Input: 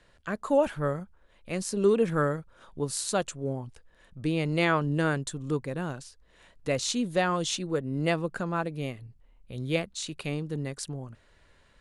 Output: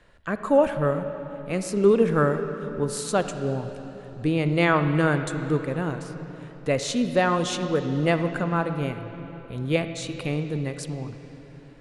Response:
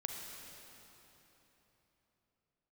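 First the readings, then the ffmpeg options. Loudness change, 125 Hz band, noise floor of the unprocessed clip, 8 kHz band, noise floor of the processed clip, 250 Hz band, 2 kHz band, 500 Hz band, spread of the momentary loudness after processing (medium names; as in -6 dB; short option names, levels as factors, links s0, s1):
+4.5 dB, +5.5 dB, -61 dBFS, -1.0 dB, -45 dBFS, +5.5 dB, +4.5 dB, +5.5 dB, 16 LU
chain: -filter_complex "[0:a]asplit=2[s0][s1];[1:a]atrim=start_sample=2205,lowpass=3300[s2];[s1][s2]afir=irnorm=-1:irlink=0,volume=0.944[s3];[s0][s3]amix=inputs=2:normalize=0"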